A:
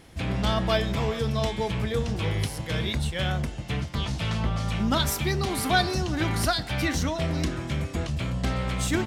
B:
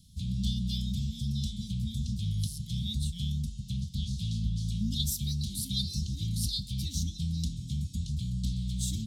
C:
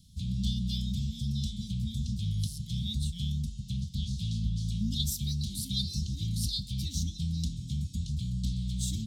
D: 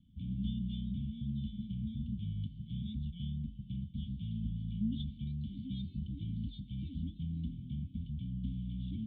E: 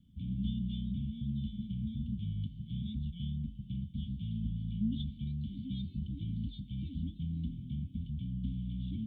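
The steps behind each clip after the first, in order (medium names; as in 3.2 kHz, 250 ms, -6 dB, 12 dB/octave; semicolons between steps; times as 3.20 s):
Chebyshev band-stop 210–3600 Hz, order 4; trim -3 dB
peaking EQ 11 kHz -3.5 dB 0.5 oct
cascade formant filter i; trim +4.5 dB
trim +1.5 dB; Opus 64 kbps 48 kHz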